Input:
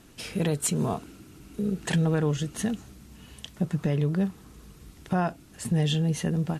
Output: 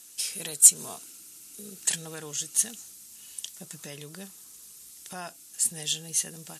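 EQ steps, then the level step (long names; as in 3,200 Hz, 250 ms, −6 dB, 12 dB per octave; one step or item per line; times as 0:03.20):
RIAA equalisation recording
parametric band 7,900 Hz +14 dB 2.3 octaves
−11.5 dB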